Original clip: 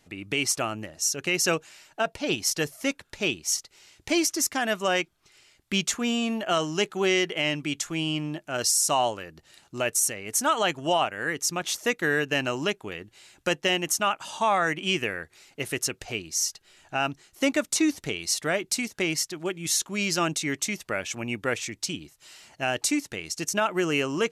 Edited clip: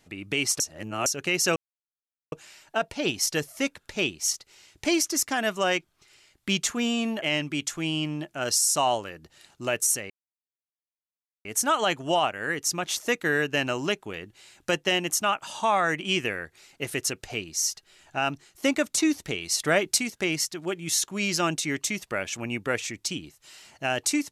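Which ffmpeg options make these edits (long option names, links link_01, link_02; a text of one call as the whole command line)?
ffmpeg -i in.wav -filter_complex "[0:a]asplit=8[link_01][link_02][link_03][link_04][link_05][link_06][link_07][link_08];[link_01]atrim=end=0.602[link_09];[link_02]atrim=start=0.598:end=1.062,asetpts=PTS-STARTPTS,areverse[link_10];[link_03]atrim=start=1.058:end=1.56,asetpts=PTS-STARTPTS,afade=type=out:start_time=0.498:duration=0.004:curve=hsin,apad=pad_dur=0.76[link_11];[link_04]atrim=start=1.56:end=6.462,asetpts=PTS-STARTPTS,afade=type=in:duration=0.004:curve=hsin[link_12];[link_05]atrim=start=7.348:end=10.23,asetpts=PTS-STARTPTS,afade=type=out:start_time=2.878:duration=0.004:curve=hsin,apad=pad_dur=1.35[link_13];[link_06]atrim=start=10.23:end=18.382,asetpts=PTS-STARTPTS,afade=type=in:duration=0.004:curve=hsin[link_14];[link_07]atrim=start=18.378:end=18.762,asetpts=PTS-STARTPTS,volume=4dB[link_15];[link_08]atrim=start=18.758[link_16];[link_09][link_10]acrossfade=duration=0.004:curve1=hsin:curve2=hsin[link_17];[link_11][link_12]concat=n=2:v=0:a=1[link_18];[link_17][link_18]acrossfade=duration=0.004:curve1=hsin:curve2=hsin[link_19];[link_13][link_14]concat=n=2:v=0:a=1[link_20];[link_19][link_20]acrossfade=duration=0.004:curve1=hsin:curve2=hsin[link_21];[link_21][link_15]acrossfade=duration=0.004:curve1=hsin:curve2=hsin[link_22];[link_22][link_16]acrossfade=duration=0.004:curve1=hsin:curve2=hsin" out.wav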